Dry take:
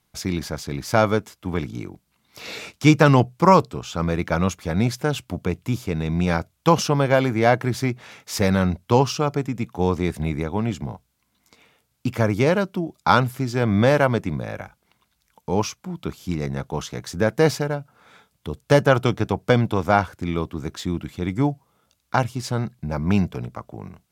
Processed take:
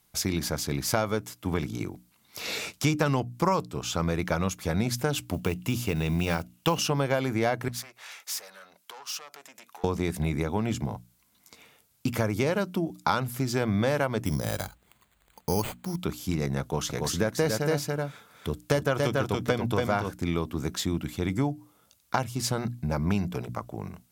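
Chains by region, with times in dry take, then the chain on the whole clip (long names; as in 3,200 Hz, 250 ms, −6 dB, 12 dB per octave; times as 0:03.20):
0:05.33–0:06.90: one scale factor per block 7 bits + parametric band 2,800 Hz +10 dB 0.23 octaves
0:07.68–0:09.84: downward compressor 10 to 1, threshold −28 dBFS + tube saturation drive 32 dB, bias 0.35 + high-pass filter 860 Hz
0:14.25–0:15.96: low-shelf EQ 67 Hz +11.5 dB + bad sample-rate conversion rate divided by 8×, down none, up hold
0:16.61–0:20.11: notch filter 830 Hz + single-tap delay 283 ms −3.5 dB
whole clip: high-shelf EQ 6,800 Hz +9.5 dB; mains-hum notches 60/120/180/240/300 Hz; downward compressor 4 to 1, threshold −23 dBFS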